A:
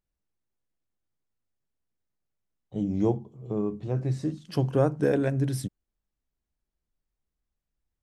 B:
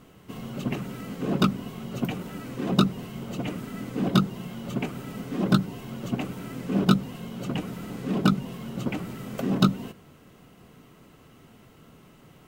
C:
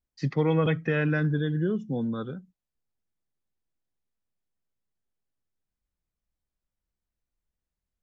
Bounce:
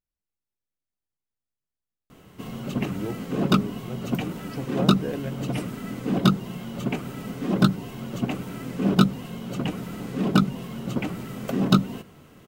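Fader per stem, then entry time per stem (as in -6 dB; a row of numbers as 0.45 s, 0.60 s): -7.5 dB, +2.0 dB, mute; 0.00 s, 2.10 s, mute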